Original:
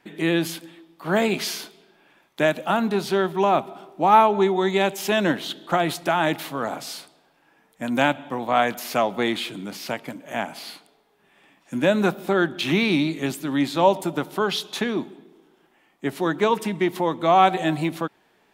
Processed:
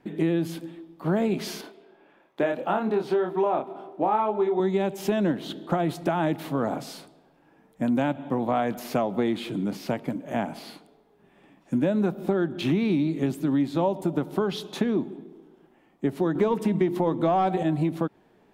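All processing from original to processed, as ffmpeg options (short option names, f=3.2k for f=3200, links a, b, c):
-filter_complex "[0:a]asettb=1/sr,asplit=3[a][b][c];[a]atrim=end=1.614[d];[b]atrim=start=1.61:end=4.6,asetpts=PTS-STARTPTS,afade=t=in:d=0.004:c=qsin,afade=t=out:st=2.986:d=0.004:c=qsin,bass=f=250:g=-14,treble=f=4k:g=-9,asplit=2[e][f];[f]adelay=28,volume=-4dB[g];[e][g]amix=inputs=2:normalize=0,atrim=end_sample=131859[h];[c]atrim=start=4.596[i];[d][h]acrossfade=d=0.004:c1=hsin:c2=qsin[j];[j][i]acrossfade=d=0.004:c1=qsin:c2=hsin,asettb=1/sr,asplit=3[k][l][m];[k]atrim=end=16.354[n];[l]atrim=start=16.35:end=17.63,asetpts=PTS-STARTPTS,afade=t=in:d=0.004:c=qsin,afade=t=out:st=1.276:d=0.004:c=qsin,bandreject=f=50:t=h:w=6,bandreject=f=100:t=h:w=6,bandreject=f=150:t=h:w=6,bandreject=f=200:t=h:w=6,bandreject=f=250:t=h:w=6,bandreject=f=300:t=h:w=6,bandreject=f=350:t=h:w=6,acontrast=72[o];[m]atrim=start=17.626[p];[n][o]acrossfade=d=0.004:c1=hsin:c2=qsin[q];[q][p]acrossfade=d=0.004:c1=qsin:c2=hsin,tiltshelf=f=800:g=8,acompressor=threshold=-21dB:ratio=5"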